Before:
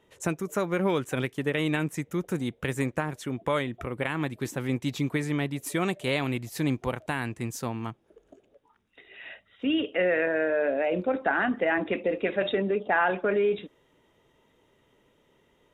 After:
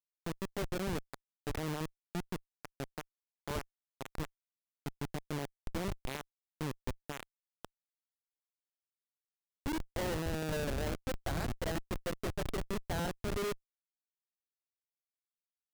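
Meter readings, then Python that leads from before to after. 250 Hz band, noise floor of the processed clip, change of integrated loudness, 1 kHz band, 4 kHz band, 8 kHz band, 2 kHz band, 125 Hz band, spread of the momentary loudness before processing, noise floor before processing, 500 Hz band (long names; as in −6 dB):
−12.0 dB, below −85 dBFS, −11.5 dB, −12.0 dB, −8.5 dB, −6.0 dB, −15.5 dB, −8.0 dB, 8 LU, −67 dBFS, −13.5 dB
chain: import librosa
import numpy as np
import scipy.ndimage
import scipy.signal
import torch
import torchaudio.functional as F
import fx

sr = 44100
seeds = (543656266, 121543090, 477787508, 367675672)

y = fx.tremolo_shape(x, sr, shape='triangle', hz=0.59, depth_pct=30)
y = fx.schmitt(y, sr, flips_db=-23.5)
y = F.gain(torch.from_numpy(y), -3.5).numpy()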